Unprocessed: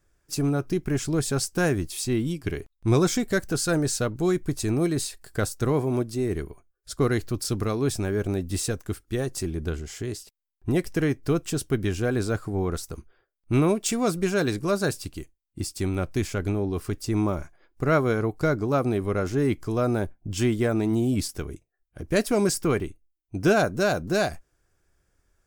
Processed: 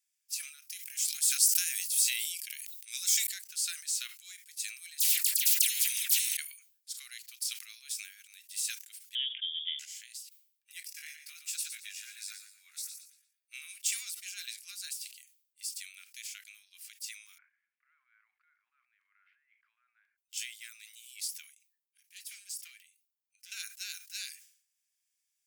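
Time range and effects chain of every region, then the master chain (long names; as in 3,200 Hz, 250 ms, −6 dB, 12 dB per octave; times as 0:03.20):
0:00.62–0:03.27: linear-phase brick-wall high-pass 640 Hz + high-shelf EQ 5,100 Hz +11 dB + level that may fall only so fast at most 41 dB per second
0:05.00–0:06.37: transient designer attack +4 dB, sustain +10 dB + all-pass dispersion lows, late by 111 ms, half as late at 1,500 Hz + every bin compressed towards the loudest bin 10 to 1
0:09.15–0:09.79: high-pass filter 120 Hz + voice inversion scrambler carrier 3,500 Hz
0:10.86–0:13.53: notch filter 3,100 Hz, Q 7.9 + double-tracking delay 19 ms −4 dB + repeating echo 116 ms, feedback 30%, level −8 dB
0:17.38–0:20.18: inverse Chebyshev low-pass filter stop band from 6,400 Hz, stop band 70 dB + compressor whose output falls as the input rises −30 dBFS
0:21.44–0:23.52: downward compressor 1.5 to 1, threshold −47 dBFS + gain into a clipping stage and back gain 28.5 dB
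whole clip: Butterworth high-pass 2,200 Hz 36 dB per octave; high-shelf EQ 7,200 Hz +7.5 dB; level that may fall only so fast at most 100 dB per second; level −7 dB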